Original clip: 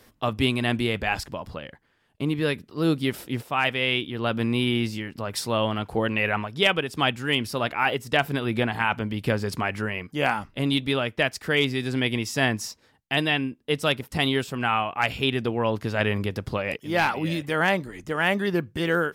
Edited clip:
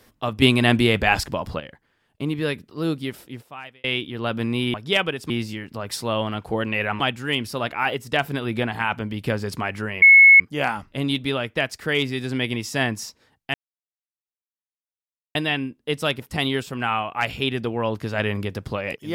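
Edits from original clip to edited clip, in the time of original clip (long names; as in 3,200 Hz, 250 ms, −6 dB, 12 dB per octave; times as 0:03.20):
0:00.42–0:01.60: clip gain +7 dB
0:02.64–0:03.84: fade out
0:06.44–0:07.00: move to 0:04.74
0:10.02: insert tone 2,190 Hz −6.5 dBFS 0.38 s
0:13.16: splice in silence 1.81 s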